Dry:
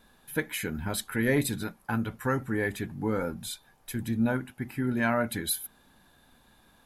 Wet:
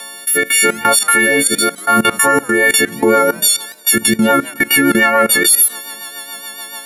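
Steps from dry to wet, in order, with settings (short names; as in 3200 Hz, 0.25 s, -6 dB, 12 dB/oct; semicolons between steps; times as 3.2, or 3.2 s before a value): frequency quantiser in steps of 4 st; HPF 410 Hz 12 dB/oct; level quantiser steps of 19 dB; rotary speaker horn 0.85 Hz, later 7 Hz, at 2.36; 1.4–1.99 notch comb 920 Hz; maximiser +31.5 dB; warbling echo 0.177 s, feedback 41%, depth 198 cents, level -24 dB; gain -1 dB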